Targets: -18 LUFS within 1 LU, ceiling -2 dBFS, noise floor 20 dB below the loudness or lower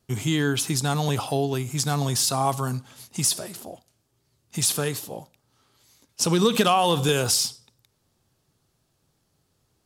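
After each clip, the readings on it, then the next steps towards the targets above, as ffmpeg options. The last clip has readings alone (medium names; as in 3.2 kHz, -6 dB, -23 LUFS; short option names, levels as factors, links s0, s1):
loudness -23.5 LUFS; peak level -8.0 dBFS; loudness target -18.0 LUFS
-> -af "volume=1.88"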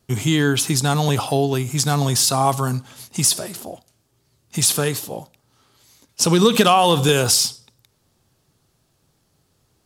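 loudness -18.0 LUFS; peak level -2.5 dBFS; noise floor -66 dBFS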